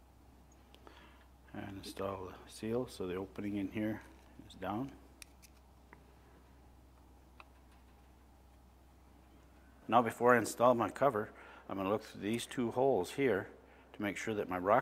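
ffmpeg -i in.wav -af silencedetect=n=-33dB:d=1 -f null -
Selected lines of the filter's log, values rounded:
silence_start: 0.00
silence_end: 1.58 | silence_duration: 1.58
silence_start: 5.22
silence_end: 9.90 | silence_duration: 4.68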